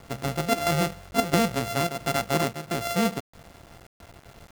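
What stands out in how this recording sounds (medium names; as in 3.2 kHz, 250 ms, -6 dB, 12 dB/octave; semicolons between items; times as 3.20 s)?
a buzz of ramps at a fixed pitch in blocks of 64 samples; chopped level 1.5 Hz, depth 65%, duty 80%; a quantiser's noise floor 8-bit, dither none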